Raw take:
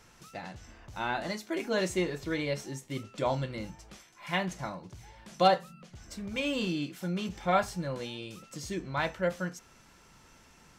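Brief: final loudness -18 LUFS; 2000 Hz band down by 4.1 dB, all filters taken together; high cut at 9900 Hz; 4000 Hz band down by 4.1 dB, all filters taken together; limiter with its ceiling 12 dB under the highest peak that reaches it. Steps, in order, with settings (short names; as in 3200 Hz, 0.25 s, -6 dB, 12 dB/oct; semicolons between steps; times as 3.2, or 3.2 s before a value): LPF 9900 Hz; bell 2000 Hz -4.5 dB; bell 4000 Hz -3.5 dB; gain +18.5 dB; limiter -6 dBFS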